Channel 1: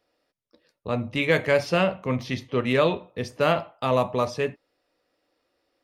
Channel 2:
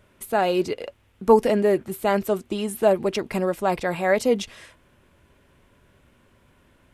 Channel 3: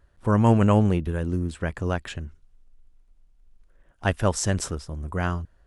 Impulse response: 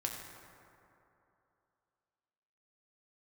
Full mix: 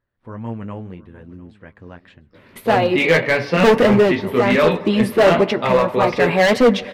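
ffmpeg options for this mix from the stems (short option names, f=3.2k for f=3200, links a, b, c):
-filter_complex "[0:a]highpass=130,flanger=delay=16.5:depth=2.4:speed=0.57,adelay=1800,volume=0.5dB,asplit=2[a][b];[b]volume=-13dB[c];[1:a]tremolo=f=0.72:d=0.64,adelay=2350,volume=2.5dB,asplit=2[d][e];[e]volume=-16.5dB[f];[2:a]volume=-19.5dB,asplit=2[g][h];[h]volume=-20.5dB[i];[3:a]atrim=start_sample=2205[j];[c][f]amix=inputs=2:normalize=0[k];[k][j]afir=irnorm=-1:irlink=0[l];[i]aecho=0:1:701|1402|2103|2804:1|0.23|0.0529|0.0122[m];[a][d][g][l][m]amix=inputs=5:normalize=0,equalizer=f=125:t=o:w=1:g=10,equalizer=f=250:t=o:w=1:g=10,equalizer=f=500:t=o:w=1:g=8,equalizer=f=1k:t=o:w=1:g=7,equalizer=f=2k:t=o:w=1:g=12,equalizer=f=4k:t=o:w=1:g=8,equalizer=f=8k:t=o:w=1:g=-7,asoftclip=type=hard:threshold=-5dB,flanger=delay=8.3:depth=4:regen=-42:speed=1.8:shape=sinusoidal"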